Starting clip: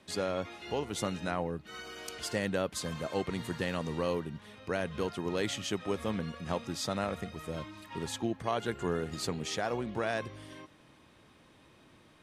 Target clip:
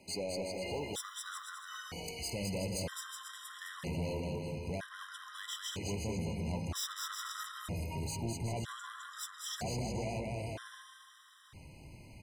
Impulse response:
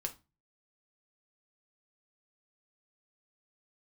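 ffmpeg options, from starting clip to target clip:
-filter_complex "[0:a]asplit=2[s0][s1];[s1]acompressor=threshold=0.00708:ratio=6,volume=1.06[s2];[s0][s2]amix=inputs=2:normalize=0,asubboost=boost=4.5:cutoff=140,asettb=1/sr,asplit=3[s3][s4][s5];[s3]atrim=end=6.754[s6];[s4]atrim=start=6.75:end=7.48,asetpts=PTS-STARTPTS,afade=t=in:d=0.004:c=qsin,afade=t=out:st=0.726:d=0.004:c=qsin,acontrast=68[s7];[s5]atrim=start=7.476[s8];[s6][s7]acrossfade=d=0.004:c1=hsin:c2=qsin[s9];[s9][s8]acrossfade=d=0.004:c1=qsin:c2=hsin,highshelf=f=5600:g=8,bandreject=f=53.05:t=h:w=4,bandreject=f=106.1:t=h:w=4,bandreject=f=159.15:t=h:w=4,bandreject=f=212.2:t=h:w=4,bandreject=f=265.25:t=h:w=4,bandreject=f=318.3:t=h:w=4,bandreject=f=371.35:t=h:w=4,bandreject=f=424.4:t=h:w=4,bandreject=f=477.45:t=h:w=4,bandreject=f=530.5:t=h:w=4,bandreject=f=583.55:t=h:w=4,bandreject=f=636.6:t=h:w=4,bandreject=f=689.65:t=h:w=4,bandreject=f=742.7:t=h:w=4,bandreject=f=795.75:t=h:w=4,bandreject=f=848.8:t=h:w=4,bandreject=f=901.85:t=h:w=4,bandreject=f=954.9:t=h:w=4,bandreject=f=1007.95:t=h:w=4,bandreject=f=1061:t=h:w=4,bandreject=f=1114.05:t=h:w=4,bandreject=f=1167.1:t=h:w=4,bandreject=f=1220.15:t=h:w=4,bandreject=f=1273.2:t=h:w=4,bandreject=f=1326.25:t=h:w=4,bandreject=f=1379.3:t=h:w=4,bandreject=f=1432.35:t=h:w=4,bandreject=f=1485.4:t=h:w=4,bandreject=f=1538.45:t=h:w=4,bandreject=f=1591.5:t=h:w=4,bandreject=f=1644.55:t=h:w=4,bandreject=f=1697.6:t=h:w=4,bandreject=f=1750.65:t=h:w=4,bandreject=f=1803.7:t=h:w=4,bandreject=f=1856.75:t=h:w=4,bandreject=f=1909.8:t=h:w=4,bandreject=f=1962.85:t=h:w=4,bandreject=f=2015.9:t=h:w=4,asplit=2[s10][s11];[s11]aecho=0:1:210|367.5|485.6|574.2|640.7:0.631|0.398|0.251|0.158|0.1[s12];[s10][s12]amix=inputs=2:normalize=0,asoftclip=type=tanh:threshold=0.0473,asettb=1/sr,asplit=3[s13][s14][s15];[s13]atrim=end=0.464[s16];[s14]atrim=start=0.46:end=1.81,asetpts=PTS-STARTPTS,afade=t=in:d=0.004:c=qsin,afade=t=out:st=1.346:d=0.004:c=qsin,acrusher=bits=8:mode=log:mix=0:aa=0.000001[s17];[s15]atrim=start=1.806[s18];[s16][s17]acrossfade=d=0.004:c1=hsin:c2=qsin[s19];[s19][s18]acrossfade=d=0.004:c1=qsin:c2=hsin,afftfilt=real='re*gt(sin(2*PI*0.52*pts/sr)*(1-2*mod(floor(b*sr/1024/1000),2)),0)':imag='im*gt(sin(2*PI*0.52*pts/sr)*(1-2*mod(floor(b*sr/1024/1000),2)),0)':win_size=1024:overlap=0.75,volume=0.631"

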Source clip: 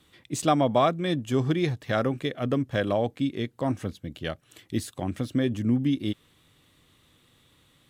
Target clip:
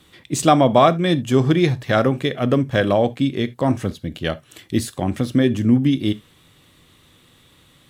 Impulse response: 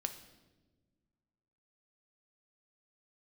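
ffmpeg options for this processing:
-filter_complex "[0:a]asplit=2[s0][s1];[1:a]atrim=start_sample=2205,afade=t=out:st=0.13:d=0.01,atrim=end_sample=6174[s2];[s1][s2]afir=irnorm=-1:irlink=0,volume=1.19[s3];[s0][s3]amix=inputs=2:normalize=0,volume=1.26"

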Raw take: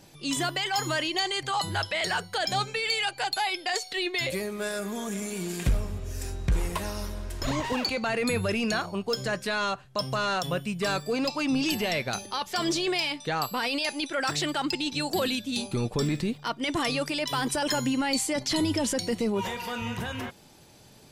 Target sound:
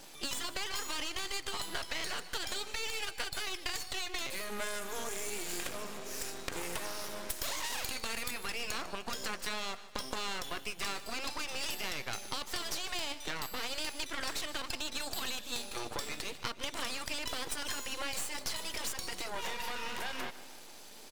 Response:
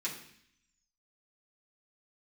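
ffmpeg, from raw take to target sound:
-filter_complex "[0:a]asettb=1/sr,asplit=3[s0][s1][s2];[s0]atrim=end=7.294[s3];[s1]atrim=start=7.29:end=8.31,asetpts=PTS-STARTPTS,afade=t=in:d=0.004:c=qsin,afade=t=out:st=1.016:d=0.004:c=qsin,aemphasis=mode=production:type=75kf[s4];[s2]atrim=start=8.306[s5];[s3][s4]acrossfade=d=0.004:c1=hsin:c2=qsin[s6];[s6][s5]acrossfade=d=0.004:c1=qsin:c2=hsin,afftfilt=real='re*lt(hypot(re,im),0.2)':imag='im*lt(hypot(re,im),0.2)':win_size=1024:overlap=0.75,highpass=f=210:w=0.5412,highpass=f=210:w=1.3066,lowshelf=f=350:g=-9.5,acompressor=threshold=0.01:ratio=6,aeval=exprs='max(val(0),0)':c=same,aecho=1:1:151|302|453|604|755:0.15|0.0808|0.0436|0.0236|0.0127,volume=2.66"

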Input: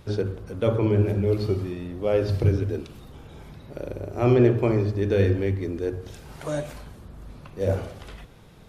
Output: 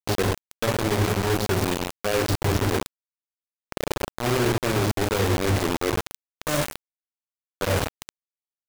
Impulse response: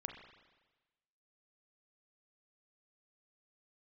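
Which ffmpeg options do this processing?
-af "highshelf=f=4500:g=4,areverse,acompressor=threshold=0.0355:ratio=6,areverse,acrusher=bits=4:mix=0:aa=0.000001,volume=2.24"

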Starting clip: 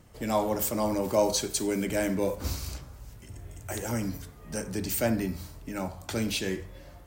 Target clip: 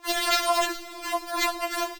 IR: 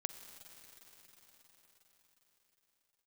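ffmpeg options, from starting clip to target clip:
-filter_complex "[0:a]aeval=exprs='(mod(8.91*val(0)+1,2)-1)/8.91':c=same,lowshelf=f=89:g=-9.5,asplit=8[s0][s1][s2][s3][s4][s5][s6][s7];[s1]adelay=132,afreqshift=-46,volume=0.266[s8];[s2]adelay=264,afreqshift=-92,volume=0.155[s9];[s3]adelay=396,afreqshift=-138,volume=0.0891[s10];[s4]adelay=528,afreqshift=-184,volume=0.0519[s11];[s5]adelay=660,afreqshift=-230,volume=0.0302[s12];[s6]adelay=792,afreqshift=-276,volume=0.0174[s13];[s7]adelay=924,afreqshift=-322,volume=0.0101[s14];[s0][s8][s9][s10][s11][s12][s13][s14]amix=inputs=8:normalize=0,acrusher=samples=15:mix=1:aa=0.000001,asetrate=156114,aresample=44100,asplit=2[s15][s16];[1:a]atrim=start_sample=2205[s17];[s16][s17]afir=irnorm=-1:irlink=0,volume=1.06[s18];[s15][s18]amix=inputs=2:normalize=0,afftfilt=real='re*4*eq(mod(b,16),0)':imag='im*4*eq(mod(b,16),0)':win_size=2048:overlap=0.75"

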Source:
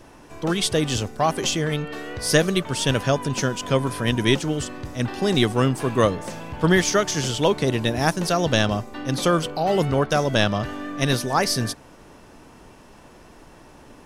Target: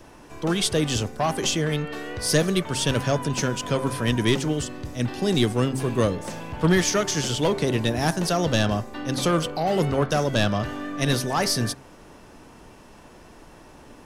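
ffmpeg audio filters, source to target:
-filter_complex "[0:a]asettb=1/sr,asplit=3[s0][s1][s2];[s0]atrim=end=4.614[s3];[s1]atrim=start=4.61:end=6.25,asetpts=PTS-STARTPTS,afade=t=in:d=0.004:c=qsin,afade=t=out:st=1.636:d=0.004:c=qsin,equalizer=f=1200:t=o:w=1.7:g=-4.5[s4];[s2]atrim=start=6.246[s5];[s3][s4]acrossfade=d=0.004:c1=hsin:c2=qsin[s6];[s6][s5]acrossfade=d=0.004:c1=qsin:c2=hsin,acrossover=split=280|5900[s7][s8][s9];[s8]asoftclip=type=tanh:threshold=0.15[s10];[s7][s10][s9]amix=inputs=3:normalize=0,bandreject=f=132.4:t=h:w=4,bandreject=f=264.8:t=h:w=4,bandreject=f=397.2:t=h:w=4,bandreject=f=529.6:t=h:w=4,bandreject=f=662:t=h:w=4,bandreject=f=794.4:t=h:w=4,bandreject=f=926.8:t=h:w=4,bandreject=f=1059.2:t=h:w=4,bandreject=f=1191.6:t=h:w=4,bandreject=f=1324:t=h:w=4,bandreject=f=1456.4:t=h:w=4,bandreject=f=1588.8:t=h:w=4,bandreject=f=1721.2:t=h:w=4,bandreject=f=1853.6:t=h:w=4,bandreject=f=1986:t=h:w=4,bandreject=f=2118.4:t=h:w=4,bandreject=f=2250.8:t=h:w=4,bandreject=f=2383.2:t=h:w=4"

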